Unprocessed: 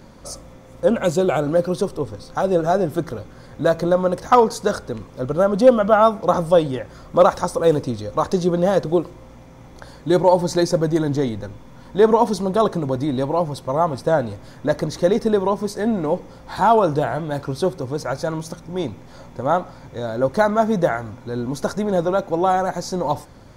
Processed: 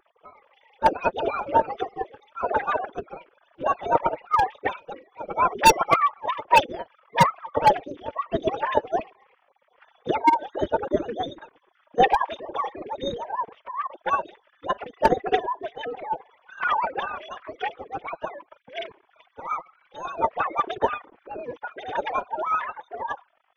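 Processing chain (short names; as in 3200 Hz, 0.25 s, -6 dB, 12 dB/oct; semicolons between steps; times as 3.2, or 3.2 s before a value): sine-wave speech; hard clip -3.5 dBFS, distortion -15 dB; formant-preserving pitch shift +9.5 st; gain -4.5 dB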